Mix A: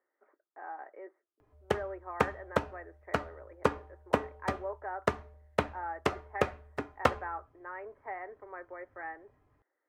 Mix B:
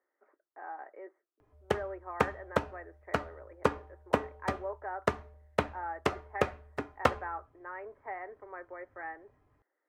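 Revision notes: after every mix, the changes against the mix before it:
no change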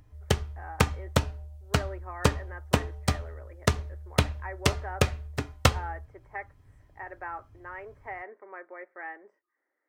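background: entry -1.40 s; master: remove three-band isolator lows -16 dB, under 240 Hz, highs -17 dB, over 2 kHz

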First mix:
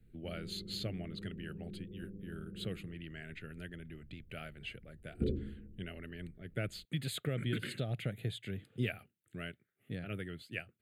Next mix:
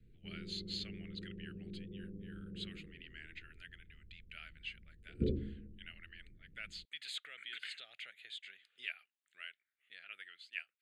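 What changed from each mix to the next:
speech: add Butterworth band-pass 3.4 kHz, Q 0.71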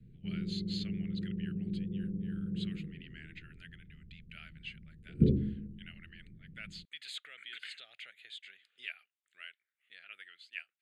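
background: add peaking EQ 160 Hz +14.5 dB 1.4 oct

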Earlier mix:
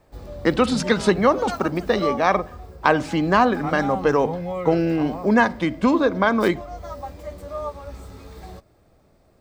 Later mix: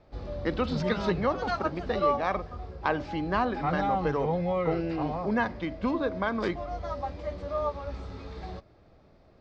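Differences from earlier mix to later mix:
speech -10.5 dB; master: add inverse Chebyshev low-pass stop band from 11 kHz, stop band 50 dB

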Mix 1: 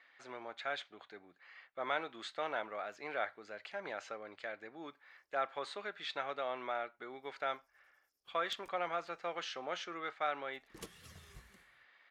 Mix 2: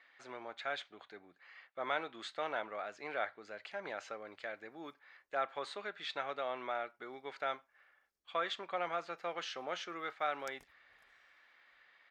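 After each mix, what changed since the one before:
background: entry +1.95 s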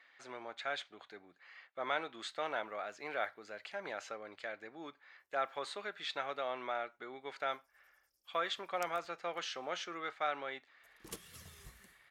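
background: entry -1.65 s; master: add treble shelf 8.1 kHz +11 dB

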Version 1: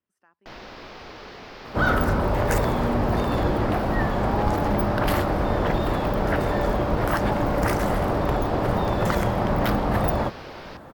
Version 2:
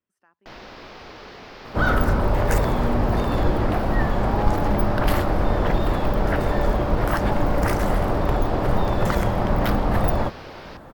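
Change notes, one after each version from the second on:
second sound: remove high-pass 66 Hz 6 dB/octave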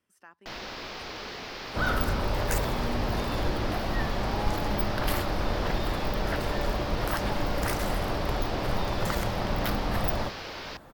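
speech +7.5 dB; second sound -8.5 dB; master: add treble shelf 2.5 kHz +9 dB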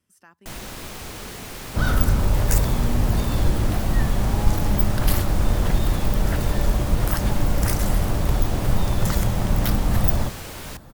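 first sound: add resonant high shelf 6.7 kHz +11 dB, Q 3; master: add tone controls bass +11 dB, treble +9 dB

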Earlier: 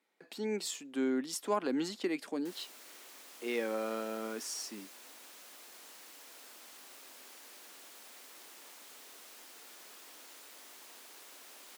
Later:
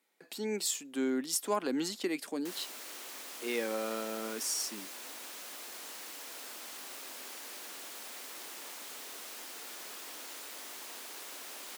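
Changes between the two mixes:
speech: remove low-pass 3.4 kHz 6 dB/octave; background +8.0 dB

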